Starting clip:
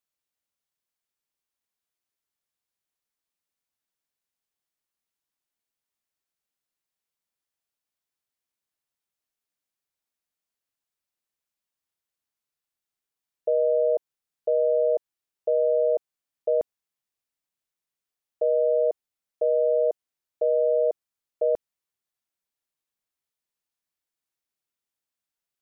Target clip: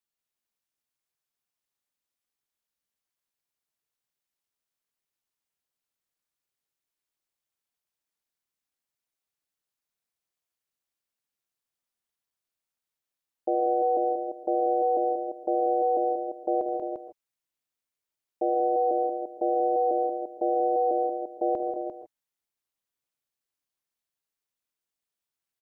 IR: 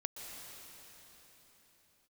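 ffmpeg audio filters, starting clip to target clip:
-filter_complex "[0:a]aecho=1:1:74|186|262|347:0.237|0.473|0.15|0.422[a];[1:a]atrim=start_sample=2205,afade=t=out:st=0.21:d=0.01,atrim=end_sample=9702[b];[a][b]afir=irnorm=-1:irlink=0,aeval=exprs='val(0)*sin(2*PI*130*n/s)':c=same,volume=3dB"

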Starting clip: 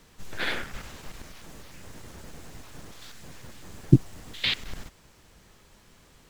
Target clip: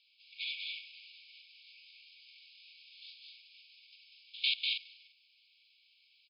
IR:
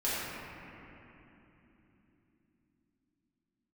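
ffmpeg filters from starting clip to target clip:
-filter_complex "[0:a]asettb=1/sr,asplit=3[a][b][c];[a]atrim=end=1.644[d];[b]atrim=start=1.64:end=3.17,asetpts=PTS-STARTPTS,afade=t=in:d=0.004:c=qsin,afade=t=out:st=1.526:d=0.004:c=qsin,asplit=2[e][f];[f]adelay=24,volume=-2dB[g];[e][g]amix=inputs=2:normalize=0,atrim=end_sample=67473[h];[c]atrim=start=3.166[i];[d][h]acrossfade=d=0.004:c1=hsin:c2=qsin[j];[j][i]acrossfade=d=0.004:c1=qsin:c2=hsin,asplit=2[k][l];[l]aecho=0:1:195.3|239.1:0.631|0.447[m];[k][m]amix=inputs=2:normalize=0,afftfilt=real='re*between(b*sr/4096,2200,5200)':imag='im*between(b*sr/4096,2200,5200)':win_size=4096:overlap=0.75,volume=-4dB"

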